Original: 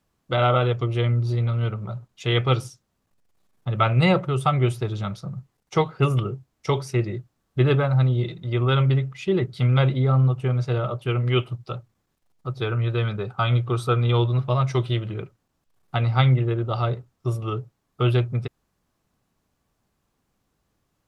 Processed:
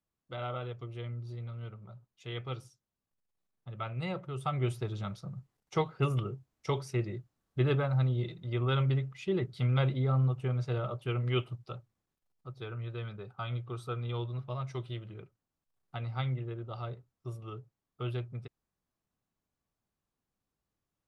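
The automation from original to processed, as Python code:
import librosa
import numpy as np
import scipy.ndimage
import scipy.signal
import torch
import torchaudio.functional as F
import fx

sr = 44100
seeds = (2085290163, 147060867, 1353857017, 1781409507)

y = fx.gain(x, sr, db=fx.line((4.11, -18.0), (4.72, -9.0), (11.44, -9.0), (12.57, -15.5)))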